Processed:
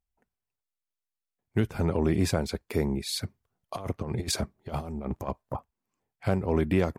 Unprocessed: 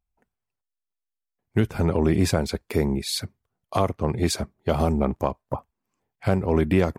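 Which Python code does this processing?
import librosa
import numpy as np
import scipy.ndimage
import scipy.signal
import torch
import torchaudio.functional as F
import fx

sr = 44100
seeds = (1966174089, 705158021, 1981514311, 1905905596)

y = fx.over_compress(x, sr, threshold_db=-26.0, ratio=-0.5, at=(3.23, 5.57))
y = y * 10.0 ** (-4.5 / 20.0)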